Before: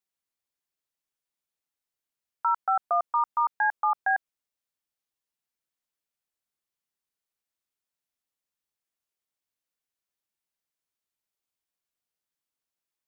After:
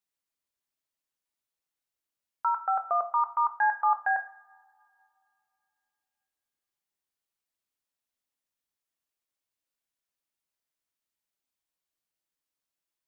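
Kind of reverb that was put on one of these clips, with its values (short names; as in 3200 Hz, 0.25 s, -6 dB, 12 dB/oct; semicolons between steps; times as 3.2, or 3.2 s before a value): two-slope reverb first 0.45 s, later 2.8 s, from -26 dB, DRR 6.5 dB; gain -1.5 dB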